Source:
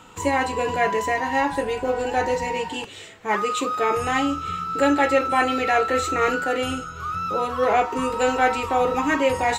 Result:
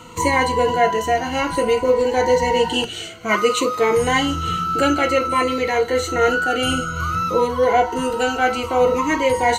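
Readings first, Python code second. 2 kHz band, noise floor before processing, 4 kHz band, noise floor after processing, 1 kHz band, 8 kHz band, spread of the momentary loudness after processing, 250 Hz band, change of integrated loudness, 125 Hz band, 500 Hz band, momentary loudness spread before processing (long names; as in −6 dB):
+3.0 dB, −40 dBFS, +7.5 dB, −31 dBFS, +2.5 dB, +5.5 dB, 4 LU, +3.0 dB, +3.5 dB, +7.0 dB, +5.5 dB, 8 LU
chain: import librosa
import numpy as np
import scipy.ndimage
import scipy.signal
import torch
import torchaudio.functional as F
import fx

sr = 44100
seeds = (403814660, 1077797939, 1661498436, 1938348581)

y = fx.ripple_eq(x, sr, per_octave=1.9, db=11)
y = fx.rider(y, sr, range_db=5, speed_s=0.5)
y = fx.notch_cascade(y, sr, direction='falling', hz=0.56)
y = F.gain(torch.from_numpy(y), 4.5).numpy()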